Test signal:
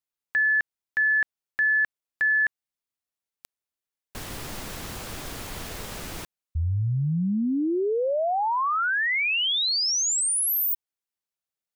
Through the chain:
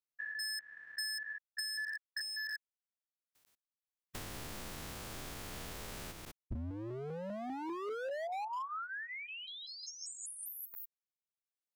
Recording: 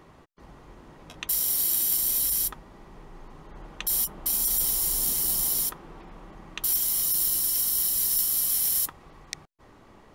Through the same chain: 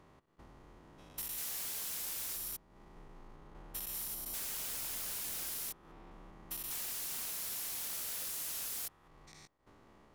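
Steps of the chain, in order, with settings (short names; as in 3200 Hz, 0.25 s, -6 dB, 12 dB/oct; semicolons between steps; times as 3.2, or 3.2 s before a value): stepped spectrum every 0.2 s; wavefolder -28 dBFS; transient shaper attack +4 dB, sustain -8 dB; gain -7.5 dB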